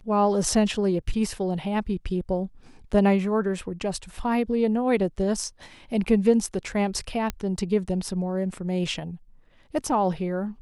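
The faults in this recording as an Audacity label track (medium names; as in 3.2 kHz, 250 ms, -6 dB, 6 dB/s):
7.300000	7.300000	pop -13 dBFS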